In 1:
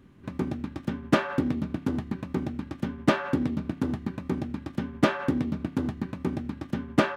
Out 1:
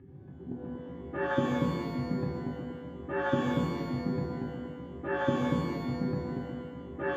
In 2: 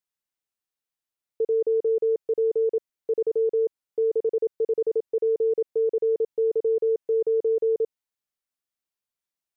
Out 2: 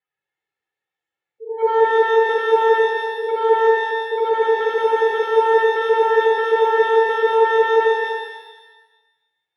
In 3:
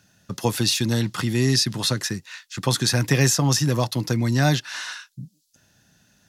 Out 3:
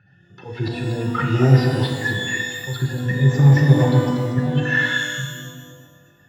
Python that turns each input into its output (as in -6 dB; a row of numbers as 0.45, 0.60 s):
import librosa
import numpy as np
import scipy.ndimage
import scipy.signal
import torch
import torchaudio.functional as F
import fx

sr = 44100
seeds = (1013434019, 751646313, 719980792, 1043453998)

y = fx.spec_expand(x, sr, power=1.9)
y = fx.hum_notches(y, sr, base_hz=60, count=8)
y = y + 0.95 * np.pad(y, (int(2.3 * sr / 1000.0), 0))[:len(y)]
y = fx.auto_swell(y, sr, attack_ms=311.0)
y = np.clip(10.0 ** (17.5 / 20.0) * y, -1.0, 1.0) / 10.0 ** (17.5 / 20.0)
y = fx.cabinet(y, sr, low_hz=100.0, low_slope=12, high_hz=2900.0, hz=(140.0, 220.0, 310.0, 710.0, 1100.0, 1800.0), db=(7, 8, -3, 6, -4, 7))
y = fx.echo_feedback(y, sr, ms=238, feedback_pct=18, wet_db=-8.5)
y = fx.rev_shimmer(y, sr, seeds[0], rt60_s=1.1, semitones=12, shimmer_db=-8, drr_db=0.5)
y = y * 10.0 ** (3.0 / 20.0)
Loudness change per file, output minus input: -3.5, +8.0, +3.0 LU